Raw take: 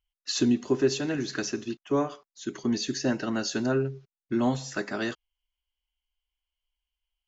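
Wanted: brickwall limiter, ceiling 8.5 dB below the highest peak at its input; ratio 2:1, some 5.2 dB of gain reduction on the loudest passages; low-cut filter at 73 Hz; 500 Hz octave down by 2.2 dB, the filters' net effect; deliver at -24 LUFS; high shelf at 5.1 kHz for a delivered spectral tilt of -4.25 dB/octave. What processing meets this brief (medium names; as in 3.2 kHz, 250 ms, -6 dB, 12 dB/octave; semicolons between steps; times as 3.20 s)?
high-pass 73 Hz; peaking EQ 500 Hz -3 dB; treble shelf 5.1 kHz -5 dB; compression 2:1, threshold -29 dBFS; trim +13 dB; peak limiter -14 dBFS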